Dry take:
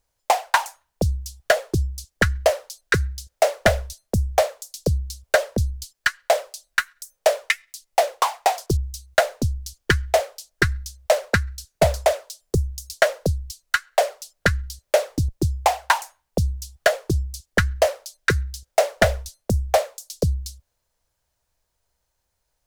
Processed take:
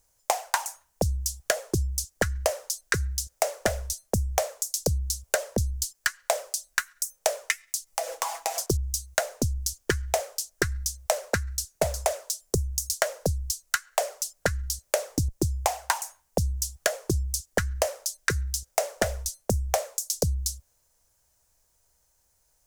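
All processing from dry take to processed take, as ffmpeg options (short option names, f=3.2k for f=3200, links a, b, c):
-filter_complex "[0:a]asettb=1/sr,asplit=3[a][b][c];[a]atrim=end=7.864[d];[b]atrim=start=7.86:end=8.59,asetpts=PTS-STARTPTS,afade=t=in:d=0.004:c=qsin,afade=t=out:st=0.726:d=0.004:c=qsin,aecho=1:1:6.1:0.98,atrim=end_sample=32193,bandreject=f=99.16:t=h:w=4,bandreject=f=198.32:t=h:w=4,bandreject=f=297.48:t=h:w=4,acompressor=threshold=-28dB:ratio=8:attack=3.2:release=140:knee=1:detection=peak[e];[c]atrim=start=8.586[f];[d][e]acrossfade=d=0.004:c1=hsin:c2=qsin[g];[g][f]acrossfade=d=0.004:c1=qsin:c2=hsin,highshelf=f=5k:t=q:w=1.5:g=6.5,acompressor=threshold=-24dB:ratio=12,volume=2.5dB"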